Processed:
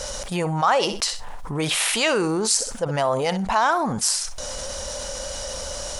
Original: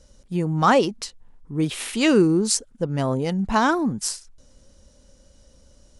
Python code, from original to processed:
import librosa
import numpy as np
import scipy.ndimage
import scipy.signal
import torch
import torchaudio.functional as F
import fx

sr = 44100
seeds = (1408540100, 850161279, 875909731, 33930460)

p1 = fx.low_shelf_res(x, sr, hz=450.0, db=-13.5, q=1.5)
p2 = p1 + fx.room_flutter(p1, sr, wall_m=10.8, rt60_s=0.2, dry=0)
p3 = fx.env_flatten(p2, sr, amount_pct=70)
y = F.gain(torch.from_numpy(p3), -4.0).numpy()